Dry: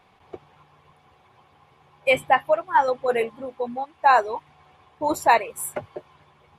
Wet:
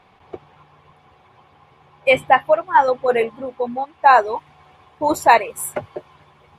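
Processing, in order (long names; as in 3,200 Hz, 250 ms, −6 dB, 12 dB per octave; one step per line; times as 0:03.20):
high-shelf EQ 6,800 Hz −9 dB, from 0:04.27 −2 dB
level +5 dB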